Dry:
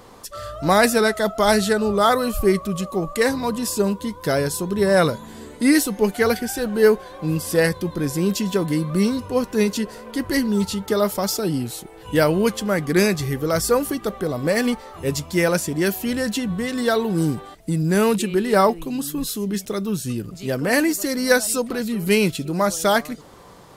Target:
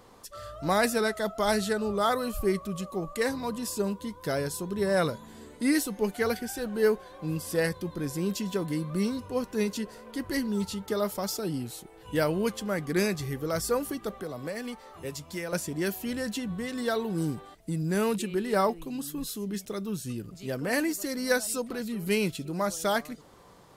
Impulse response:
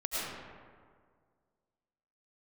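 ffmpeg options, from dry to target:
-filter_complex "[0:a]asettb=1/sr,asplit=3[a][b][c];[a]atrim=end=14.194[d];[b]atrim=start=14.19:end=15.53,asetpts=PTS-STARTPTS,afade=t=in:d=0.004:c=qsin,afade=t=out:st=1.336:d=0.004:c=qsin,acrossover=split=85|510[e][f][g];[e]acompressor=threshold=-53dB:ratio=4[h];[f]acompressor=threshold=-29dB:ratio=4[i];[g]acompressor=threshold=-28dB:ratio=4[j];[h][i][j]amix=inputs=3:normalize=0[k];[c]atrim=start=15.526[l];[d][k]acrossfade=d=0.004:c1=hsin:c2=qsin[m];[m][l]acrossfade=d=0.004:c1=qsin:c2=hsin,volume=-9dB"

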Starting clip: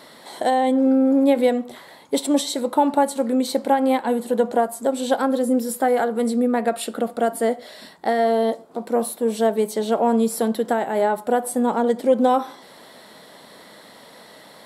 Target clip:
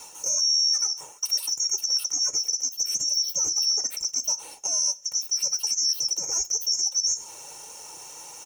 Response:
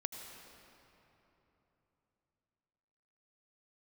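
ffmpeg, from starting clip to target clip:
-filter_complex "[0:a]afftfilt=real='real(if(lt(b,272),68*(eq(floor(b/68),0)*1+eq(floor(b/68),1)*3+eq(floor(b/68),2)*0+eq(floor(b/68),3)*2)+mod(b,68),b),0)':imag='imag(if(lt(b,272),68*(eq(floor(b/68),0)*1+eq(floor(b/68),1)*3+eq(floor(b/68),2)*0+eq(floor(b/68),3)*2)+mod(b,68),b),0)':win_size=2048:overlap=0.75,highpass=f=96:p=1,equalizer=f=220:t=o:w=0.24:g=-3.5,aecho=1:1:3.8:0.57,adynamicequalizer=threshold=0.002:dfrequency=340:dqfactor=3.4:tfrequency=340:tqfactor=3.4:attack=5:release=100:ratio=0.375:range=2:mode=boostabove:tftype=bell,alimiter=limit=-12dB:level=0:latency=1:release=267,areverse,acompressor=mode=upward:threshold=-30dB:ratio=2.5,areverse,flanger=delay=5.8:depth=7.7:regen=-46:speed=0.89:shape=triangular,asplit=2[a][b];[b]adelay=169.1,volume=-27dB,highshelf=f=4k:g=-3.8[c];[a][c]amix=inputs=2:normalize=0,asetrate=76440,aresample=44100"

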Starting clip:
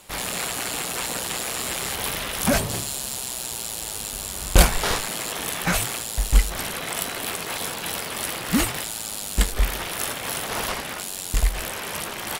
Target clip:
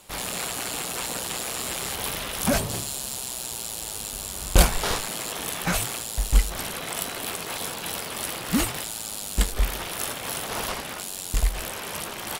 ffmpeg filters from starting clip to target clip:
-af "equalizer=f=1.9k:t=o:w=0.77:g=-2.5,volume=-2dB"

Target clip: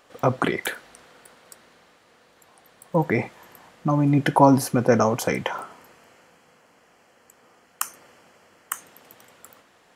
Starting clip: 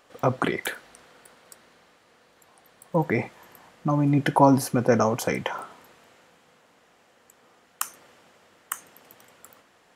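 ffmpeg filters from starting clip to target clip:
-filter_complex "[0:a]asettb=1/sr,asplit=3[a][b][c];[a]atrim=end=5.614[d];[b]atrim=start=5.61:end=8.73,asetpts=PTS-STARTPTS,afade=t=in:d=0.004:c=qsin,afade=t=out:st=3.116:d=0.004:c=qsin,bandreject=f=3.7k:w=5.1[e];[c]atrim=start=8.726[f];[d][e]acrossfade=d=0.004:c1=hsin:c2=qsin[g];[g][f]acrossfade=d=0.004:c1=qsin:c2=hsin,volume=2dB"

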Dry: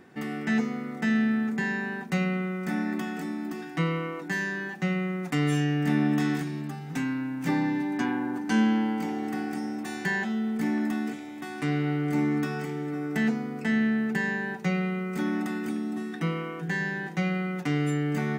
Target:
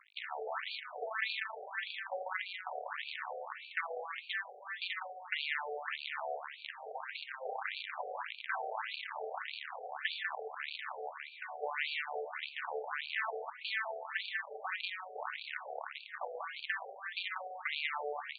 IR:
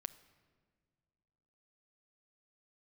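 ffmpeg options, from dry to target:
-filter_complex "[0:a]acompressor=threshold=-33dB:ratio=5,aeval=exprs='sgn(val(0))*max(abs(val(0))-0.002,0)':c=same,acrusher=bits=6:dc=4:mix=0:aa=0.000001,asplit=2[a][b];[b]aecho=0:1:195:0.596[c];[a][c]amix=inputs=2:normalize=0,afftfilt=real='re*between(b*sr/1024,550*pow(3300/550,0.5+0.5*sin(2*PI*1.7*pts/sr))/1.41,550*pow(3300/550,0.5+0.5*sin(2*PI*1.7*pts/sr))*1.41)':imag='im*between(b*sr/1024,550*pow(3300/550,0.5+0.5*sin(2*PI*1.7*pts/sr))/1.41,550*pow(3300/550,0.5+0.5*sin(2*PI*1.7*pts/sr))*1.41)':win_size=1024:overlap=0.75,volume=5.5dB"

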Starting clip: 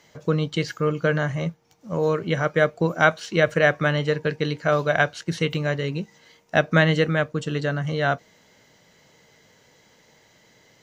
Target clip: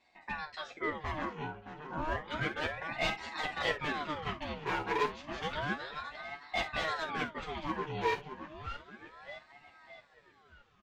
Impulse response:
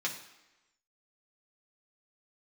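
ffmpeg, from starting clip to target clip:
-filter_complex "[0:a]asubboost=boost=10.5:cutoff=120,dynaudnorm=f=230:g=13:m=6dB,asoftclip=type=tanh:threshold=-6dB,asplit=3[a][b][c];[a]bandpass=f=730:t=q:w=8,volume=0dB[d];[b]bandpass=f=1.09k:t=q:w=8,volume=-6dB[e];[c]bandpass=f=2.44k:t=q:w=8,volume=-9dB[f];[d][e][f]amix=inputs=3:normalize=0,volume=29.5dB,asoftclip=hard,volume=-29.5dB,asplit=2[g][h];[h]adelay=618,lowpass=f=4.3k:p=1,volume=-10dB,asplit=2[i][j];[j]adelay=618,lowpass=f=4.3k:p=1,volume=0.51,asplit=2[k][l];[l]adelay=618,lowpass=f=4.3k:p=1,volume=0.51,asplit=2[m][n];[n]adelay=618,lowpass=f=4.3k:p=1,volume=0.51,asplit=2[o][p];[p]adelay=618,lowpass=f=4.3k:p=1,volume=0.51,asplit=2[q][r];[r]adelay=618,lowpass=f=4.3k:p=1,volume=0.51[s];[g][i][k][m][o][q][s]amix=inputs=7:normalize=0[t];[1:a]atrim=start_sample=2205,atrim=end_sample=3528[u];[t][u]afir=irnorm=-1:irlink=0,aeval=exprs='val(0)*sin(2*PI*850*n/s+850*0.7/0.31*sin(2*PI*0.31*n/s))':c=same,volume=2dB"

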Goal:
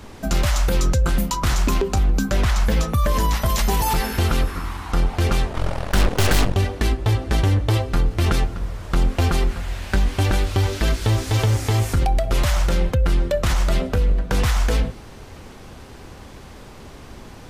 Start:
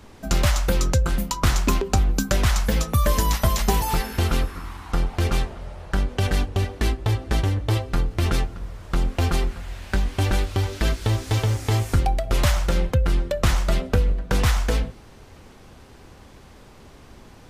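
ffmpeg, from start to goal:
-filter_complex "[0:a]asettb=1/sr,asplit=3[a][b][c];[a]atrim=end=2.104[d];[b]atrim=start=2.1:end=3.46,asetpts=PTS-STARTPTS,afade=t=in:d=0.004:c=qsin,afade=t=out:st=1.356:d=0.004:c=qsin,highshelf=f=4.9k:g=-7[e];[c]atrim=start=3.456[f];[d][e]acrossfade=d=0.004:c1=hsin:c2=qsin[g];[g][f]acrossfade=d=0.004:c1=qsin:c2=hsin,alimiter=limit=-18dB:level=0:latency=1:release=31,asplit=3[h][i][j];[h]afade=t=out:st=5.53:d=0.02[k];[i]aeval=exprs='0.126*(cos(1*acos(clip(val(0)/0.126,-1,1)))-cos(1*PI/2))+0.0447*(cos(8*acos(clip(val(0)/0.126,-1,1)))-cos(8*PI/2))':c=same,afade=t=in:st=5.53:d=0.02,afade=t=out:st=6.53:d=0.02[l];[j]afade=t=in:st=6.53:d=0.02[m];[k][l][m]amix=inputs=3:normalize=0,volume=6.5dB"

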